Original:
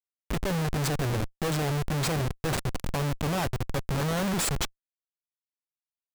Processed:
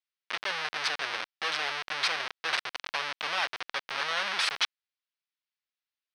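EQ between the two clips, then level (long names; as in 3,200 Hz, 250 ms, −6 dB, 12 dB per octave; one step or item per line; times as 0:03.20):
Savitzky-Golay smoothing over 15 samples
high-pass filter 1,500 Hz 12 dB per octave
high-frequency loss of the air 54 metres
+8.5 dB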